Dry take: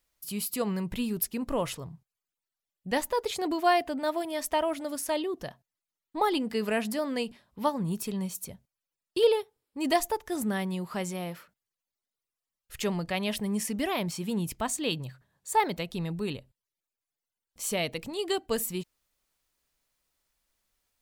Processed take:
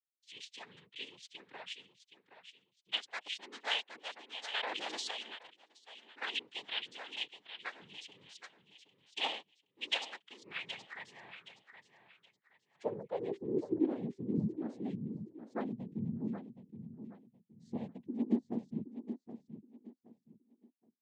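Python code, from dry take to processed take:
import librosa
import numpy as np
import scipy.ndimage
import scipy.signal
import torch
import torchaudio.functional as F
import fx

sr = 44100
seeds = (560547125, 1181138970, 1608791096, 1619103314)

p1 = fx.bin_expand(x, sr, power=1.5)
p2 = fx.noise_vocoder(p1, sr, seeds[0], bands=6)
p3 = fx.filter_sweep_bandpass(p2, sr, from_hz=3000.0, to_hz=230.0, start_s=10.29, end_s=14.26, q=4.4)
p4 = p3 + fx.echo_feedback(p3, sr, ms=771, feedback_pct=27, wet_db=-10.5, dry=0)
p5 = fx.env_flatten(p4, sr, amount_pct=70, at=(4.54, 5.11))
y = F.gain(torch.from_numpy(p5), 7.0).numpy()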